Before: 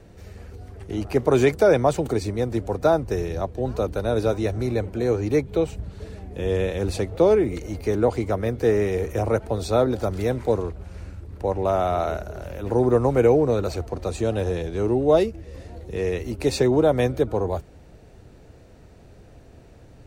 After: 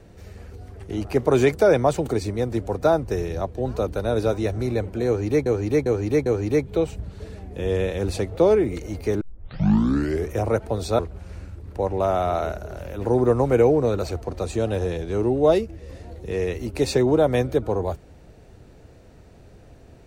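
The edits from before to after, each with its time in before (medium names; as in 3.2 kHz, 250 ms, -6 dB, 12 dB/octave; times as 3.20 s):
5.06–5.46 s: loop, 4 plays
8.01 s: tape start 1.10 s
9.79–10.64 s: delete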